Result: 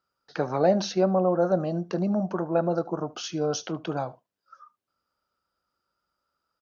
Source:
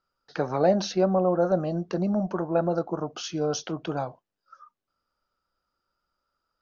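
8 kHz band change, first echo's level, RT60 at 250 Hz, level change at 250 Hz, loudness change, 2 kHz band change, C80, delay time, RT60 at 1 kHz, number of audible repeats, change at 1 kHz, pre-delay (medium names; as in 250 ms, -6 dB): no reading, -22.5 dB, no reverb, 0.0 dB, 0.0 dB, 0.0 dB, no reverb, 75 ms, no reverb, 1, 0.0 dB, no reverb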